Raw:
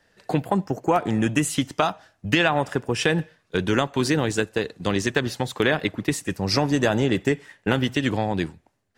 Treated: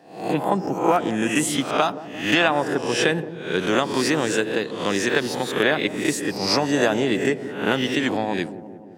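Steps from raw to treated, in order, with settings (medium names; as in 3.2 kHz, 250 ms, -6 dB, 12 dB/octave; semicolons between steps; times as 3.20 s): reverse spectral sustain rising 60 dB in 0.54 s; high-pass 200 Hz 12 dB/octave; feedback echo behind a low-pass 174 ms, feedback 63%, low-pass 620 Hz, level -11 dB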